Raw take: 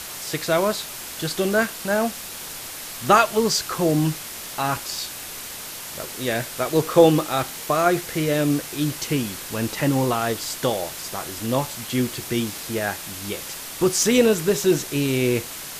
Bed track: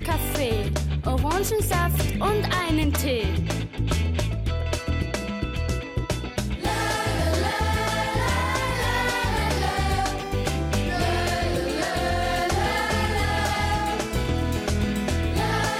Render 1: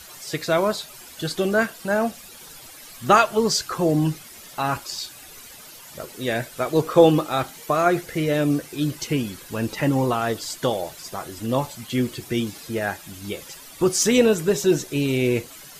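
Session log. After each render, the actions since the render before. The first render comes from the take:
broadband denoise 12 dB, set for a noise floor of −35 dBFS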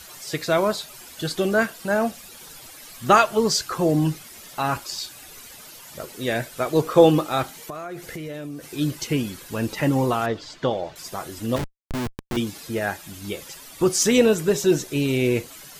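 0:07.53–0:08.71: downward compressor 10 to 1, threshold −30 dBFS
0:10.26–0:10.96: high-frequency loss of the air 170 metres
0:11.56–0:12.37: comparator with hysteresis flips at −23 dBFS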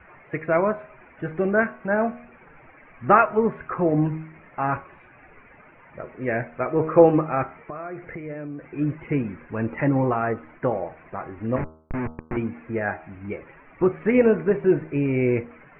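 Butterworth low-pass 2,400 Hz 72 dB per octave
hum removal 79.15 Hz, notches 19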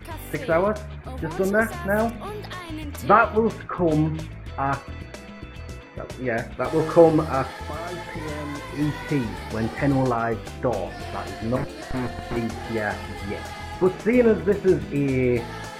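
mix in bed track −11 dB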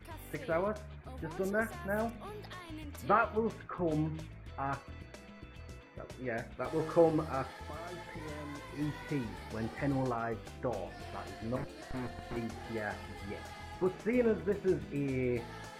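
level −12 dB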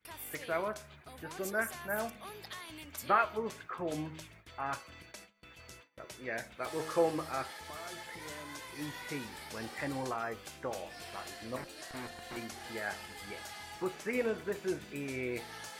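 noise gate with hold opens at −40 dBFS
spectral tilt +3 dB per octave

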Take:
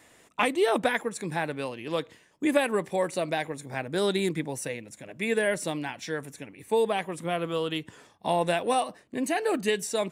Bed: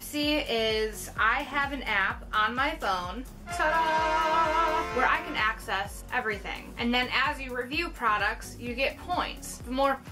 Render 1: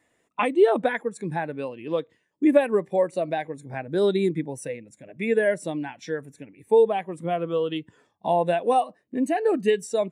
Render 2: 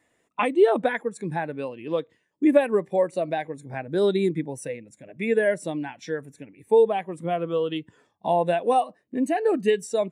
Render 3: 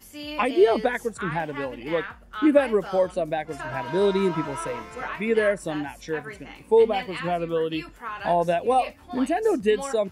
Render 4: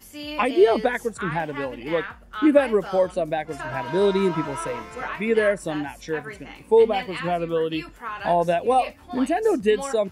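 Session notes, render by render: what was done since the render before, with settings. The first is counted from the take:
in parallel at 0 dB: downward compressor, threshold −35 dBFS, peak gain reduction 16 dB; on the sum: every bin expanded away from the loudest bin 1.5 to 1
no processing that can be heard
mix in bed −8.5 dB
level +1.5 dB

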